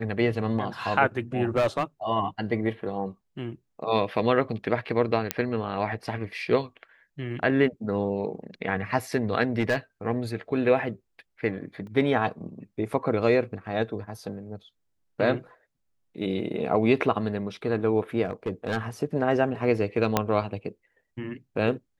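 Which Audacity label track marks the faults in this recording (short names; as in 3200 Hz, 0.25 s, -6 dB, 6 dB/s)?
1.560000	1.840000	clipped -18.5 dBFS
5.310000	5.310000	pop -6 dBFS
9.600000	9.760000	clipped -18.5 dBFS
11.870000	11.870000	gap 2.1 ms
18.250000	18.770000	clipped -22.5 dBFS
20.170000	20.170000	pop -6 dBFS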